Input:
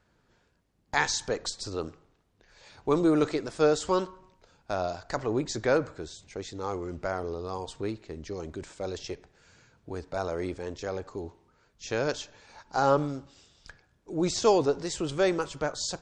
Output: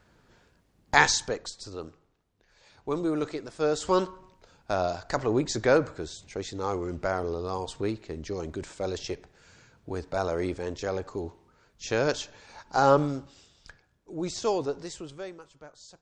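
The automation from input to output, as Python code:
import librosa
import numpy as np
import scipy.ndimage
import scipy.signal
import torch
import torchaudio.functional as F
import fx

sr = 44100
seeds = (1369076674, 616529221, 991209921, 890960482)

y = fx.gain(x, sr, db=fx.line((1.05, 6.5), (1.47, -5.0), (3.58, -5.0), (3.98, 3.0), (13.17, 3.0), (14.22, -5.0), (14.86, -5.0), (15.39, -18.0)))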